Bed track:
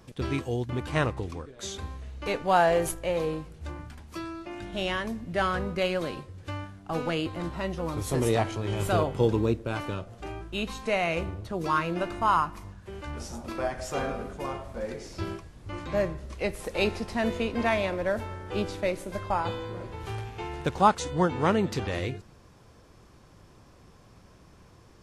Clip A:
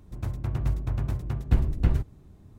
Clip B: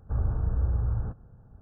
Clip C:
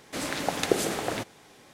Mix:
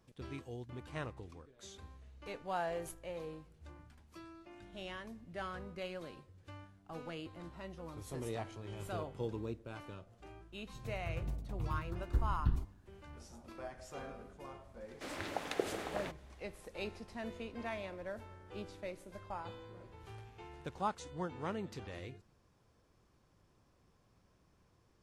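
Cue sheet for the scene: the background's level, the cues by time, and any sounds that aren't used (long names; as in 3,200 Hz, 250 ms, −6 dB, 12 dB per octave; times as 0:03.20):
bed track −16 dB
0:10.62: mix in A −9.5 dB + step-sequenced phaser 3.1 Hz 270–2,200 Hz
0:14.88: mix in C −10 dB + bass and treble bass −8 dB, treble −8 dB
not used: B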